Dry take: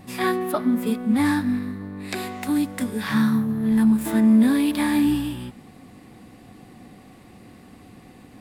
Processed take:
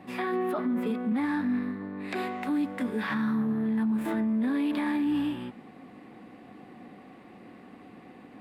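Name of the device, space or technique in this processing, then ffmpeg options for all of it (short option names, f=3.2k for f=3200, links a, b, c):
DJ mixer with the lows and highs turned down: -filter_complex "[0:a]acrossover=split=180 3100:gain=0.141 1 0.141[a][b][c];[a][b][c]amix=inputs=3:normalize=0,alimiter=limit=-22dB:level=0:latency=1:release=19"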